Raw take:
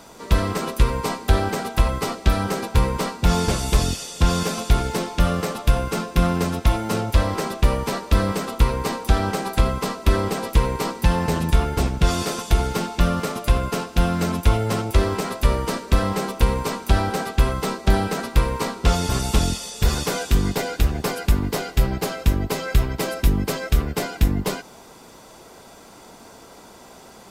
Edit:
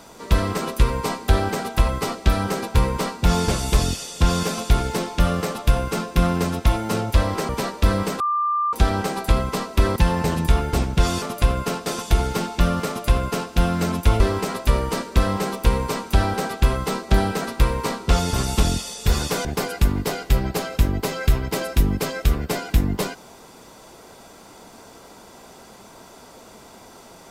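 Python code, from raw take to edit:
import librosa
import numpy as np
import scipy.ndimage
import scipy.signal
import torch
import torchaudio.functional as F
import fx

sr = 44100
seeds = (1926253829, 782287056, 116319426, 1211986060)

y = fx.edit(x, sr, fx.cut(start_s=7.49, length_s=0.29),
    fx.bleep(start_s=8.49, length_s=0.53, hz=1190.0, db=-18.5),
    fx.cut(start_s=10.25, length_s=0.75),
    fx.duplicate(start_s=13.28, length_s=0.64, to_s=12.26),
    fx.cut(start_s=14.6, length_s=0.36),
    fx.cut(start_s=20.21, length_s=0.71), tone=tone)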